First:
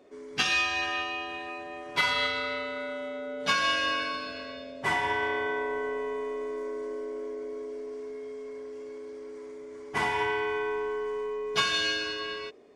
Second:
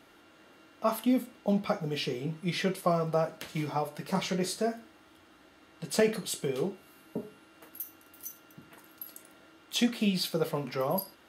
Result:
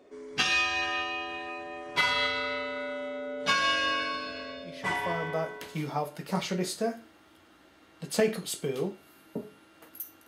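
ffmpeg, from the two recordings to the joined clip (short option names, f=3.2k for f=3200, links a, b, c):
-filter_complex "[0:a]apad=whole_dur=10.27,atrim=end=10.27,atrim=end=5.89,asetpts=PTS-STARTPTS[a];[1:a]atrim=start=2.29:end=8.07,asetpts=PTS-STARTPTS[b];[a][b]acrossfade=d=1.4:c1=tri:c2=tri"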